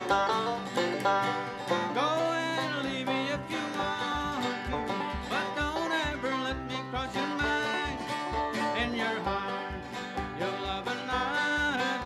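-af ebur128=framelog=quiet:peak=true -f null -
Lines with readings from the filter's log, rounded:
Integrated loudness:
  I:         -30.7 LUFS
  Threshold: -40.7 LUFS
Loudness range:
  LRA:         2.0 LU
  Threshold: -51.0 LUFS
  LRA low:   -31.8 LUFS
  LRA high:  -29.8 LUFS
True peak:
  Peak:      -15.4 dBFS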